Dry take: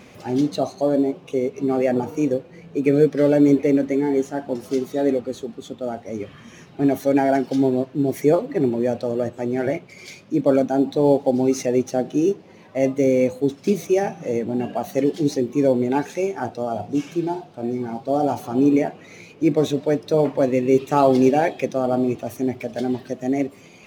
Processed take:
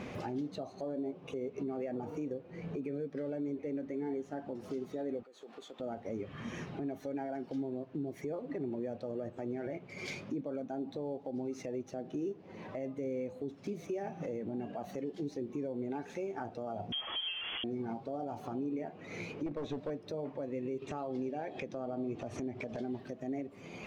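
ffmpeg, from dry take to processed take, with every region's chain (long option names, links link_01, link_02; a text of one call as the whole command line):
ffmpeg -i in.wav -filter_complex "[0:a]asettb=1/sr,asplit=3[link_01][link_02][link_03];[link_01]atrim=end=5.234[link_04];[link_02]atrim=start=5.23:end=5.8,asetpts=PTS-STARTPTS,afade=type=in:duration=0.004:curve=qsin,afade=type=out:start_time=0.566:duration=0.004:curve=qsin,highpass=640,acompressor=threshold=-46dB:ratio=8:attack=3.2:release=140:knee=1:detection=peak[link_05];[link_03]atrim=start=5.796[link_06];[link_04][link_05]acrossfade=duration=0.004:curve1=hsin:curve2=qsin[link_07];[link_07][link_06]acrossfade=duration=0.004:curve1=qsin:curve2=hsin,asettb=1/sr,asplit=3[link_08][link_09][link_10];[link_08]atrim=end=16.924[link_11];[link_09]atrim=start=16.92:end=17.64,asetpts=PTS-STARTPTS,afade=type=in:duration=0.004:curve=qsin,afade=type=out:start_time=0.716:duration=0.004:curve=qsin,aeval=exprs='val(0)+0.5*0.0376*sgn(val(0))':channel_layout=same,lowpass=frequency=3000:width_type=q:width=0.5098,lowpass=frequency=3000:width_type=q:width=0.6013,lowpass=frequency=3000:width_type=q:width=0.9,lowpass=frequency=3000:width_type=q:width=2.563,afreqshift=-3500[link_12];[link_10]atrim=start=17.636[link_13];[link_11][link_12]acrossfade=duration=0.004:curve1=hsin:curve2=qsin[link_14];[link_14][link_13]acrossfade=duration=0.004:curve1=qsin:curve2=hsin,asettb=1/sr,asplit=3[link_15][link_16][link_17];[link_15]atrim=end=19.464[link_18];[link_16]atrim=start=19.46:end=19.9,asetpts=PTS-STARTPTS,afade=type=in:duration=0.004:curve=qsin,afade=type=out:start_time=0.436:duration=0.004:curve=qsin,acrossover=split=6600[link_19][link_20];[link_20]acompressor=threshold=-57dB:ratio=4:attack=1:release=60[link_21];[link_19][link_21]amix=inputs=2:normalize=0,asubboost=boost=9.5:cutoff=130,aeval=exprs='clip(val(0),-1,0.1)':channel_layout=same[link_22];[link_17]atrim=start=19.896[link_23];[link_18][link_22]acrossfade=duration=0.004:curve1=hsin:curve2=qsin[link_24];[link_24][link_23]acrossfade=duration=0.004:curve1=qsin:curve2=hsin,asettb=1/sr,asplit=3[link_25][link_26][link_27];[link_25]atrim=end=20.824[link_28];[link_26]atrim=start=20.82:end=22.85,asetpts=PTS-STARTPTS,afade=type=in:duration=0.004:curve=qsin,afade=type=out:start_time=2.026:duration=0.004:curve=qsin,acompressor=mode=upward:threshold=-19dB:ratio=2.5:attack=3.2:release=140:knee=2.83:detection=peak,lowpass=frequency=8800:width=0.5412,lowpass=frequency=8800:width=1.3066[link_29];[link_27]atrim=start=22.846[link_30];[link_28][link_29]acrossfade=duration=0.004:curve1=hsin:curve2=qsin[link_31];[link_31][link_30]acrossfade=duration=0.004:curve1=qsin:curve2=hsin,lowpass=frequency=2100:poles=1,acompressor=threshold=-37dB:ratio=3,alimiter=level_in=8.5dB:limit=-24dB:level=0:latency=1:release=173,volume=-8.5dB,volume=3dB" out.wav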